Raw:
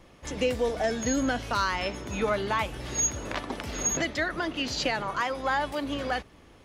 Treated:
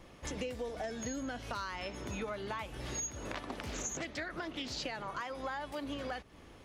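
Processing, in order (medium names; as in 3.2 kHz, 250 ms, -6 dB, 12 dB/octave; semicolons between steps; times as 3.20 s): compression 6:1, threshold -36 dBFS, peak gain reduction 13.5 dB; 3.47–4.83 s: loudspeaker Doppler distortion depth 0.26 ms; trim -1 dB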